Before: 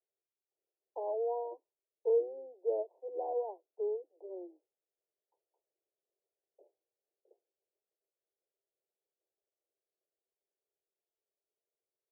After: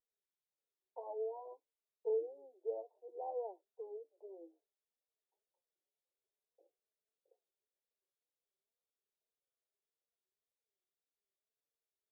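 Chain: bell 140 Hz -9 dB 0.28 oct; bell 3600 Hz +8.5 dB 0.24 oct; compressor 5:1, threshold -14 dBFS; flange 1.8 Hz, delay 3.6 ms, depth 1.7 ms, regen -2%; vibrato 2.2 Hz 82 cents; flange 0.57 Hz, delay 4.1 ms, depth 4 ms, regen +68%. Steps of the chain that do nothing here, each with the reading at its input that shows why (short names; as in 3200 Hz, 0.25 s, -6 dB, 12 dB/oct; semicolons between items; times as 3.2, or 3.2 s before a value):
bell 140 Hz: input band starts at 320 Hz; bell 3600 Hz: input band ends at 1000 Hz; compressor, threshold -14 dBFS: input peak -21.5 dBFS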